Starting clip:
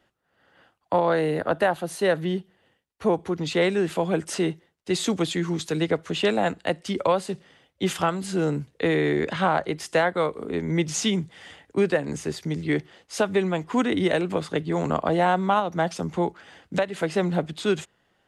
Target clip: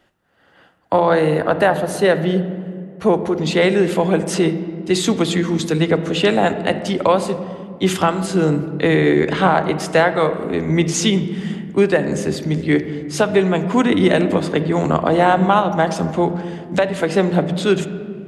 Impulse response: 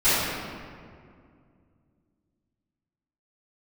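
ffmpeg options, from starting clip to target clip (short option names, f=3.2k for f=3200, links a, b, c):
-filter_complex "[0:a]asplit=2[a][b];[b]lowshelf=f=430:g=7[c];[1:a]atrim=start_sample=2205,lowpass=4.6k[d];[c][d]afir=irnorm=-1:irlink=0,volume=-30dB[e];[a][e]amix=inputs=2:normalize=0,volume=6.5dB"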